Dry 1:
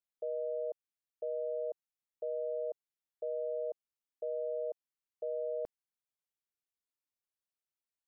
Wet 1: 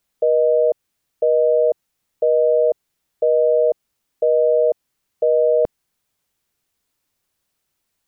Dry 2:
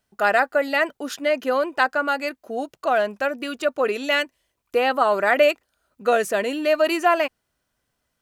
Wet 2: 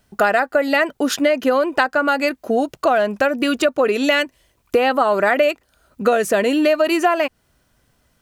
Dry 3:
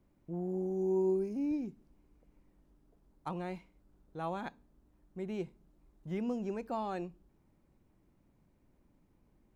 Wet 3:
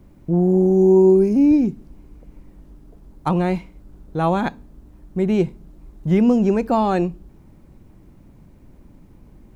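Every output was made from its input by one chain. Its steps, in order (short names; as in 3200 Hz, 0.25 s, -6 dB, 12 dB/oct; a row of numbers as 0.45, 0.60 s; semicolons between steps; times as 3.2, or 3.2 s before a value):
low shelf 280 Hz +7 dB; compressor 5:1, threshold -25 dBFS; match loudness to -18 LUFS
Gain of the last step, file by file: +19.5, +11.0, +16.5 dB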